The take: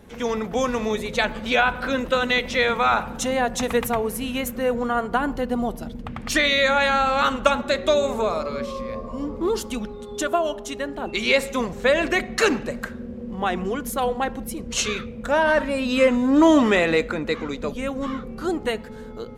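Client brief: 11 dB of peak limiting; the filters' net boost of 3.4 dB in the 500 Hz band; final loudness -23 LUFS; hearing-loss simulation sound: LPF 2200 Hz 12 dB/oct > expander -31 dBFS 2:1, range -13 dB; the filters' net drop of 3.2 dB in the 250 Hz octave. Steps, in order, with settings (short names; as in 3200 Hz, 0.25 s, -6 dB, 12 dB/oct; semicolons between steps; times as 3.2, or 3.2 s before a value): bell 250 Hz -5.5 dB; bell 500 Hz +5 dB; limiter -12 dBFS; LPF 2200 Hz 12 dB/oct; expander -31 dBFS 2:1, range -13 dB; gain +1 dB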